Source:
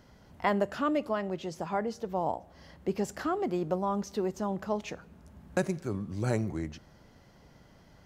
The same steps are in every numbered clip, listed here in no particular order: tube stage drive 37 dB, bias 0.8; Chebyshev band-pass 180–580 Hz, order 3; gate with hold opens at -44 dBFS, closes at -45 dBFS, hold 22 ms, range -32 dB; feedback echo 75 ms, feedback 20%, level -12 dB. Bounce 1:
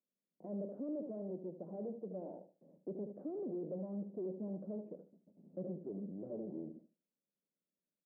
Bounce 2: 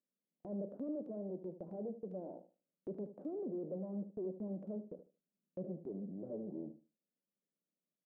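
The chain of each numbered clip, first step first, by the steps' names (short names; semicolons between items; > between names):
gate with hold > feedback echo > tube stage > Chebyshev band-pass; tube stage > Chebyshev band-pass > gate with hold > feedback echo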